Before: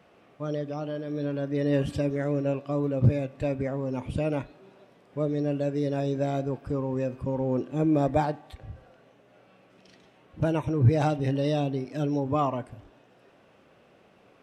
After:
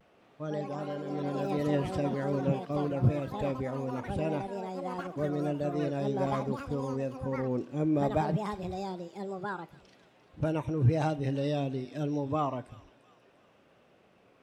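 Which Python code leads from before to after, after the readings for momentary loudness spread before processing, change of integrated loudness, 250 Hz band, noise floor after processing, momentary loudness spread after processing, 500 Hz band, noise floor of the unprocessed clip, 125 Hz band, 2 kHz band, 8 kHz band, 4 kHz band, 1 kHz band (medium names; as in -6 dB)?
10 LU, -4.5 dB, -3.5 dB, -63 dBFS, 9 LU, -3.5 dB, -59 dBFS, -4.0 dB, -2.0 dB, no reading, -2.5 dB, -1.5 dB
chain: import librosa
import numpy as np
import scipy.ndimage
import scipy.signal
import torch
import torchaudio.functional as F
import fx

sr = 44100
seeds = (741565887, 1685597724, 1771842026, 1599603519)

p1 = fx.vibrato(x, sr, rate_hz=0.75, depth_cents=44.0)
p2 = p1 + fx.echo_wet_highpass(p1, sr, ms=346, feedback_pct=46, hz=2300.0, wet_db=-13, dry=0)
p3 = fx.echo_pitch(p2, sr, ms=203, semitones=5, count=3, db_per_echo=-6.0)
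y = p3 * librosa.db_to_amplitude(-4.5)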